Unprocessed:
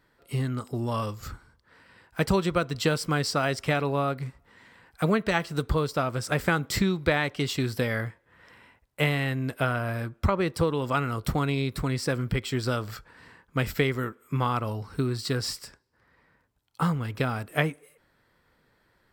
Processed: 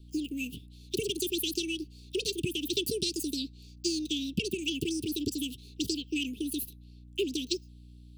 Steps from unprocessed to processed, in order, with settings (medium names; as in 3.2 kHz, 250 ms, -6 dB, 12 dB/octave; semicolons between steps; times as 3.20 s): speed mistake 33 rpm record played at 78 rpm; hum 60 Hz, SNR 19 dB; Chebyshev band-stop 430–2600 Hz, order 5; trim -2.5 dB